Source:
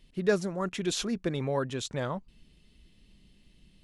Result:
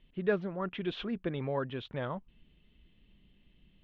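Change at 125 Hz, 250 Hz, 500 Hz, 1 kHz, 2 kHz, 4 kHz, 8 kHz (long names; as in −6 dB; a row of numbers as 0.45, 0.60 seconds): −4.0 dB, −4.0 dB, −3.5 dB, −3.0 dB, −3.5 dB, −8.0 dB, below −35 dB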